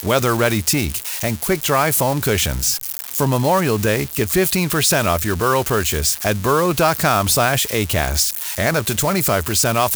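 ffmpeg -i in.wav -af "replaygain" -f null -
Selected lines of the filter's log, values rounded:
track_gain = +0.2 dB
track_peak = 0.460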